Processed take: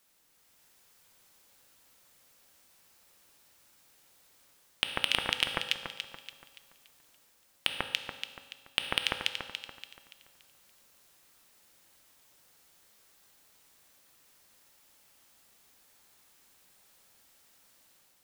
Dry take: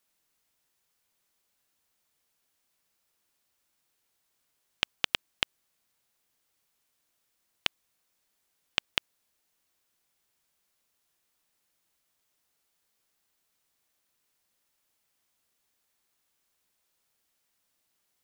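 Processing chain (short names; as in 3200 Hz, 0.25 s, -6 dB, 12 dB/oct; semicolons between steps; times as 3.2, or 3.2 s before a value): AGC gain up to 5 dB; echo with dull and thin repeats by turns 0.143 s, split 1800 Hz, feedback 62%, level -6 dB; soft clip -9 dBFS, distortion -10 dB; on a send at -9 dB: reverb RT60 1.5 s, pre-delay 3 ms; on the sum: maximiser +14 dB; gain -6.5 dB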